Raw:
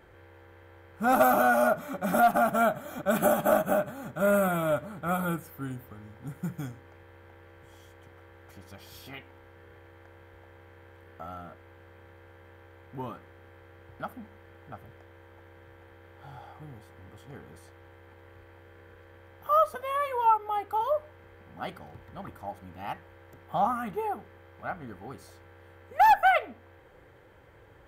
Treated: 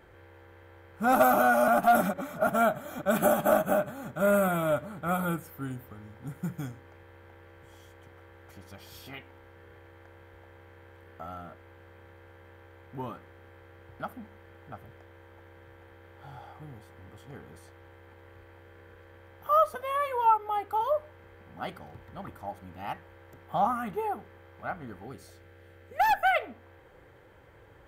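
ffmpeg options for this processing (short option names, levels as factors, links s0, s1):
-filter_complex "[0:a]asettb=1/sr,asplit=3[s0][s1][s2];[s0]atrim=end=25.044[s3];[s1]atrim=start=25.04:end=26.4,asetpts=PTS-STARTPTS,afade=t=in:d=0.004:c=qsin,afade=t=out:st=1.356:d=0.004:c=qsin,equalizer=f=1000:t=o:w=0.64:g=-9[s4];[s2]atrim=start=26.396[s5];[s3][s4]acrossfade=d=0.004:c1=hsin:c2=qsin[s6];[s6][s5]acrossfade=d=0.004:c1=qsin:c2=hsin,asplit=3[s7][s8][s9];[s7]atrim=end=1.682[s10];[s8]atrim=start=1.678:end=2.472,asetpts=PTS-STARTPTS,areverse[s11];[s9]atrim=start=2.468[s12];[s10][s11]acrossfade=d=0.004:c1=hsin:c2=hsin[s13];[s13][s12]acrossfade=d=0.004:c1=hsin:c2=hsin"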